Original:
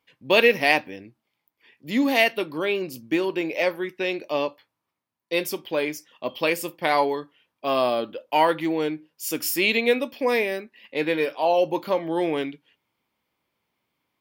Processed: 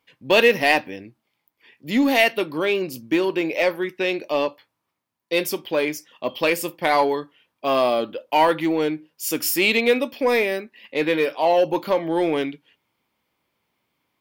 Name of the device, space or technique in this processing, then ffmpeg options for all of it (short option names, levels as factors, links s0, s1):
parallel distortion: -filter_complex "[0:a]asettb=1/sr,asplit=3[s0][s1][s2];[s0]atrim=end=0.374[s3];[s1]atrim=start=0.37:end=0.83,asetpts=PTS-STARTPTS,afade=t=in:d=0.004:c=qsin,afade=t=out:st=0.456:d=0.004:c=qsin,bandreject=f=2300:w=12[s4];[s2]atrim=start=0.826[s5];[s3][s4]acrossfade=d=0.004:c1=hsin:c2=qsin[s6];[s6][s5]acrossfade=d=0.004:c1=qsin:c2=hsin,asplit=2[s7][s8];[s8]asoftclip=type=hard:threshold=0.106,volume=0.501[s9];[s7][s9]amix=inputs=2:normalize=0"